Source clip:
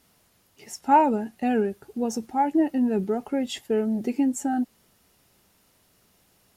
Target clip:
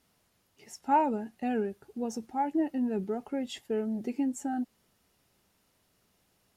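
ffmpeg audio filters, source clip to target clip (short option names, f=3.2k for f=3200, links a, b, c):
-af "highshelf=f=9.2k:g=-4.5,volume=-7dB"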